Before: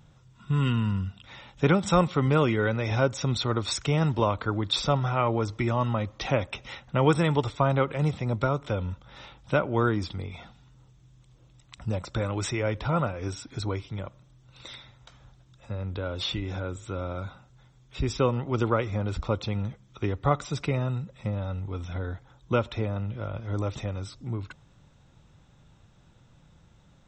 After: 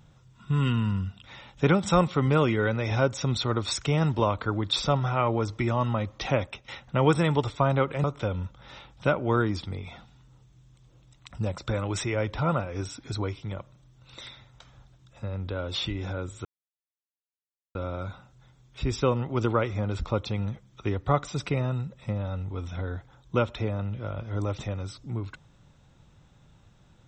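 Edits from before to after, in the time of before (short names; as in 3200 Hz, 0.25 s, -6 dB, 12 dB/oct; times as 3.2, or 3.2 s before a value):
6.42–6.68 fade out, to -14 dB
8.04–8.51 cut
16.92 insert silence 1.30 s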